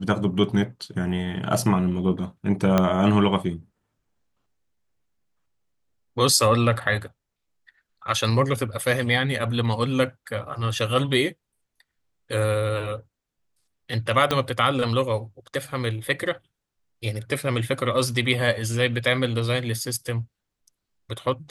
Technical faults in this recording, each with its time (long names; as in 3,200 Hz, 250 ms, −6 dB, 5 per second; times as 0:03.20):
0:02.78: click −6 dBFS
0:14.31: click −8 dBFS